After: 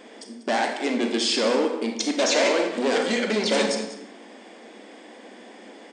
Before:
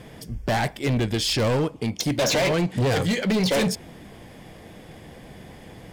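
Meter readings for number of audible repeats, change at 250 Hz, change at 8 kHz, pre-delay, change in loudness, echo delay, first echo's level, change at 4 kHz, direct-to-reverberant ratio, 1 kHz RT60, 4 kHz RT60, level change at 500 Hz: 1, −1.0 dB, +1.0 dB, 32 ms, +0.5 dB, 193 ms, −14.0 dB, +1.0 dB, 3.5 dB, 0.75 s, 0.60 s, +2.0 dB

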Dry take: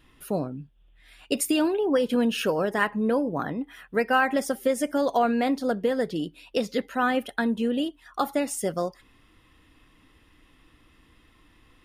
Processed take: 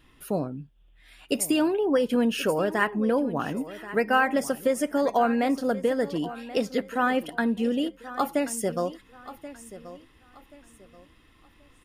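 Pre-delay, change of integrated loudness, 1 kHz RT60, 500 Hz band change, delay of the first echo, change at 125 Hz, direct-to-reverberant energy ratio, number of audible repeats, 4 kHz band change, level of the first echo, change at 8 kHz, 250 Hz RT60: no reverb audible, 0.0 dB, no reverb audible, 0.0 dB, 1,081 ms, 0.0 dB, no reverb audible, 2, −1.5 dB, −15.5 dB, 0.0 dB, no reverb audible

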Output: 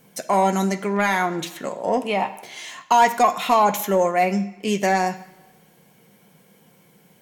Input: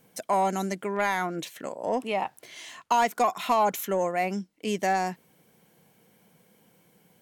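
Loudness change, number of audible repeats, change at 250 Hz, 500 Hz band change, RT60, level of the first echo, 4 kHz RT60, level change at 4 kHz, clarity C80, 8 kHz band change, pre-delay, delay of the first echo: +7.0 dB, no echo audible, +8.0 dB, +6.5 dB, 1.0 s, no echo audible, 0.95 s, +6.5 dB, 16.0 dB, +6.5 dB, 3 ms, no echo audible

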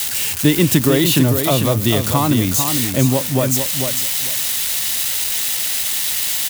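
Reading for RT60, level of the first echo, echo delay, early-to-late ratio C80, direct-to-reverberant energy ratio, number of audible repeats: no reverb audible, −6.5 dB, 447 ms, no reverb audible, no reverb audible, 2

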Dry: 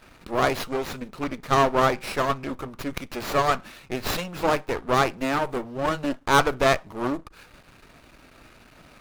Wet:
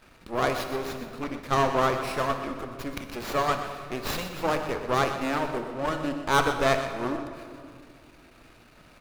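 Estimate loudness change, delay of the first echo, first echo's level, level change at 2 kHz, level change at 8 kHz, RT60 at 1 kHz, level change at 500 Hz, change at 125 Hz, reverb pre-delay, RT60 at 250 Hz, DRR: −3.0 dB, 123 ms, −11.0 dB, −3.0 dB, −3.0 dB, 2.2 s, −3.0 dB, −2.5 dB, 28 ms, 2.9 s, 6.0 dB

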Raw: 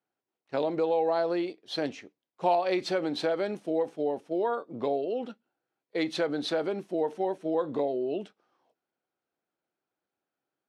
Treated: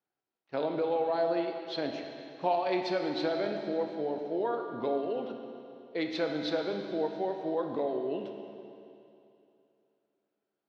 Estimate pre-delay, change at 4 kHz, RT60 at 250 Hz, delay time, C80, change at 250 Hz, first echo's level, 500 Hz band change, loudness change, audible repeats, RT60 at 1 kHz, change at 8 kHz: 19 ms, −2.5 dB, 2.8 s, no echo audible, 5.5 dB, −2.0 dB, no echo audible, −2.5 dB, −2.5 dB, no echo audible, 2.8 s, can't be measured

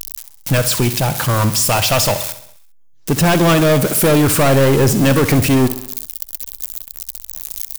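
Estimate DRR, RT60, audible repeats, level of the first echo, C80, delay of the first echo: no reverb audible, no reverb audible, 5, −13.0 dB, no reverb audible, 66 ms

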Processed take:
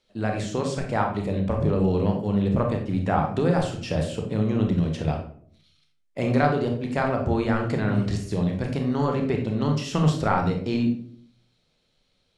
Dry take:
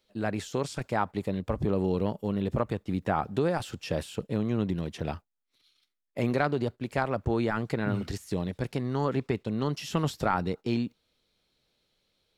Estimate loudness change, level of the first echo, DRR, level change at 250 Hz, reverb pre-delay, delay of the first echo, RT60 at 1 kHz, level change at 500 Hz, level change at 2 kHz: +5.5 dB, no echo audible, 2.0 dB, +6.0 dB, 26 ms, no echo audible, 0.45 s, +4.5 dB, +3.5 dB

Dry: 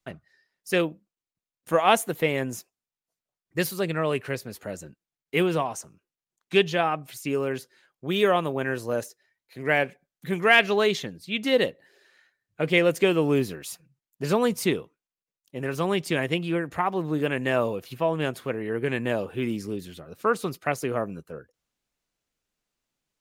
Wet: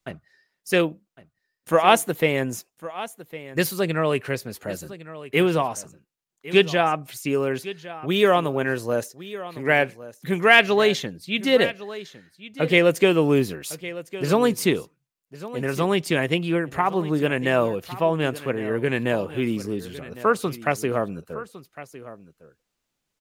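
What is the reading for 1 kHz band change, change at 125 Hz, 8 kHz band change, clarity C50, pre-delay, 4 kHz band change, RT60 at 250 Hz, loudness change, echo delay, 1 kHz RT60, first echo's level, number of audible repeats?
+3.5 dB, +3.5 dB, +3.5 dB, no reverb audible, no reverb audible, +3.5 dB, no reverb audible, +3.5 dB, 1,107 ms, no reverb audible, −16.0 dB, 1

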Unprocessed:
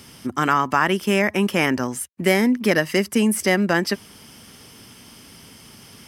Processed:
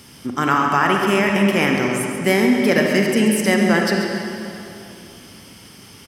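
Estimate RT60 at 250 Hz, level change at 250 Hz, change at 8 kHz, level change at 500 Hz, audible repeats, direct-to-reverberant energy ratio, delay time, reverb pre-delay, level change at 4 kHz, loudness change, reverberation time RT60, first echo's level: 3.1 s, +3.5 dB, +1.0 dB, +3.0 dB, 1, 0.5 dB, 137 ms, 33 ms, +2.5 dB, +3.0 dB, 2.8 s, −9.5 dB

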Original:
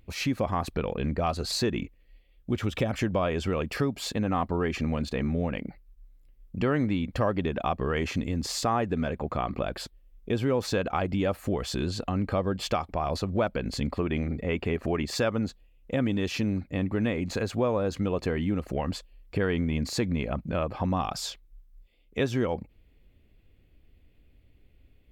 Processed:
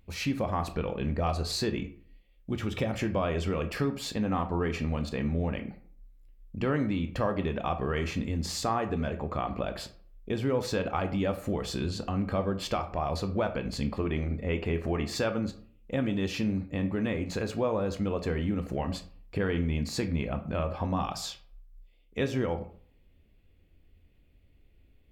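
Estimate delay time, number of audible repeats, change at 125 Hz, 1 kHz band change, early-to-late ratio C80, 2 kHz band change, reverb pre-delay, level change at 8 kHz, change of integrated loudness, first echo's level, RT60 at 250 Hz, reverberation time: no echo audible, no echo audible, −1.5 dB, −2.0 dB, 17.0 dB, −2.5 dB, 14 ms, −2.5 dB, −2.0 dB, no echo audible, 0.60 s, 0.50 s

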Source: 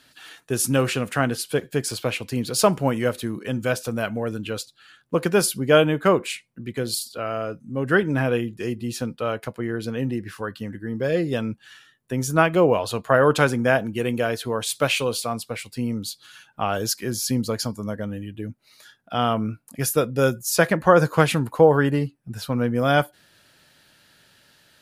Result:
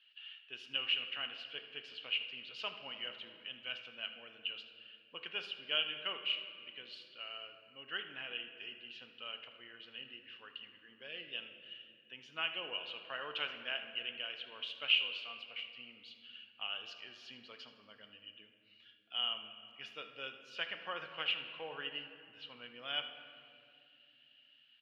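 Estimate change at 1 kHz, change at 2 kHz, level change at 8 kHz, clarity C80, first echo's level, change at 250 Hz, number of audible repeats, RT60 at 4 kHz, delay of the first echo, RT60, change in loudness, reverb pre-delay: −24.0 dB, −14.0 dB, below −40 dB, 9.5 dB, −15.0 dB, −36.0 dB, 1, 1.5 s, 79 ms, 2.4 s, −17.0 dB, 3 ms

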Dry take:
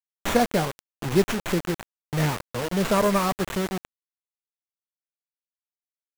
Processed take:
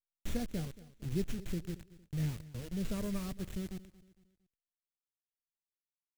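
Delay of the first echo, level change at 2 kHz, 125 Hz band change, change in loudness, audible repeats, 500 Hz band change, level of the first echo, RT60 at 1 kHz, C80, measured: 229 ms, −22.0 dB, −9.5 dB, −14.5 dB, 3, −20.0 dB, −18.5 dB, no reverb audible, no reverb audible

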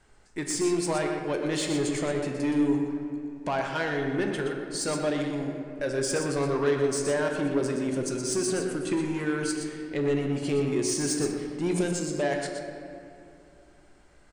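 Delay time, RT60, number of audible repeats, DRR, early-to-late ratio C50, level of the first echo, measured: 121 ms, 2.6 s, 1, 1.5 dB, 3.0 dB, −7.5 dB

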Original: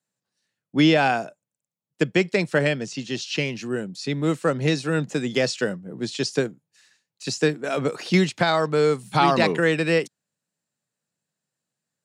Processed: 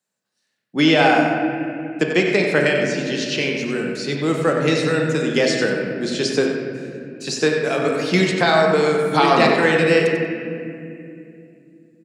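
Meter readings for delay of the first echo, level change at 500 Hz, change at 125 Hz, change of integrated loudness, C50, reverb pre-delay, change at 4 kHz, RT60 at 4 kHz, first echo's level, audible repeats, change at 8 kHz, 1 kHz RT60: 93 ms, +5.5 dB, +1.5 dB, +4.5 dB, 1.5 dB, 3 ms, +5.0 dB, 1.6 s, −9.0 dB, 1, +4.0 dB, 2.1 s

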